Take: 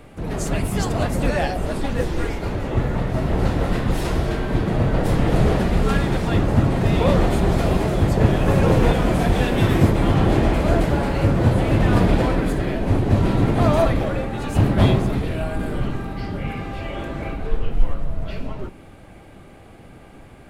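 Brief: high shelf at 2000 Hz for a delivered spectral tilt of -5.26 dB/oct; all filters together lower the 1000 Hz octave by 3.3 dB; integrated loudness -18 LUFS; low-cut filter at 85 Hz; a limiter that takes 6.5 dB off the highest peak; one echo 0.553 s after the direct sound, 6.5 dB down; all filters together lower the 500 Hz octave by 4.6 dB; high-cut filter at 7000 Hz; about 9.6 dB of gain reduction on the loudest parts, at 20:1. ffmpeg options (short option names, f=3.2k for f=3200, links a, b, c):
-af "highpass=85,lowpass=7k,equalizer=f=500:t=o:g=-5.5,equalizer=f=1k:t=o:g=-4,highshelf=f=2k:g=7,acompressor=threshold=-22dB:ratio=20,alimiter=limit=-20dB:level=0:latency=1,aecho=1:1:553:0.473,volume=11dB"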